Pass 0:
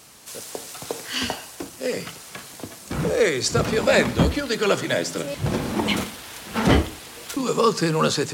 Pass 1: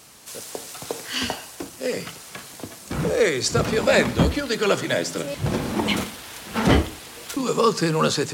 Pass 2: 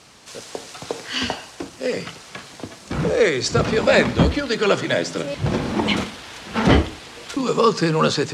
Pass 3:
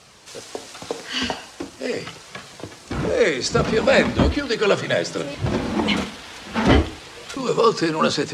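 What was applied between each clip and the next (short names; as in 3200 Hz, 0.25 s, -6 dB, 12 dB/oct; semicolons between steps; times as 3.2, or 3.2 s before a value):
nothing audible
LPF 5800 Hz 12 dB/oct; gain +2.5 dB
flange 0.41 Hz, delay 1.5 ms, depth 3.1 ms, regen -58%; gain +3.5 dB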